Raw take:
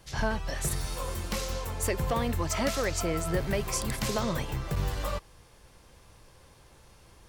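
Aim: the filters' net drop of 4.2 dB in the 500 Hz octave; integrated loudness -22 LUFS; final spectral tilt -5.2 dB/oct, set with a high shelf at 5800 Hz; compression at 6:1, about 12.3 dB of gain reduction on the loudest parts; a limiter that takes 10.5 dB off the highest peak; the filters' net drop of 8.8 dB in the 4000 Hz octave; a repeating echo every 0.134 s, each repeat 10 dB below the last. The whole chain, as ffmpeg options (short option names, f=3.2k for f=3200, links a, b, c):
-af "equalizer=f=500:t=o:g=-5,equalizer=f=4k:t=o:g=-8.5,highshelf=f=5.8k:g=-8,acompressor=threshold=-39dB:ratio=6,alimiter=level_in=15dB:limit=-24dB:level=0:latency=1,volume=-15dB,aecho=1:1:134|268|402|536:0.316|0.101|0.0324|0.0104,volume=27.5dB"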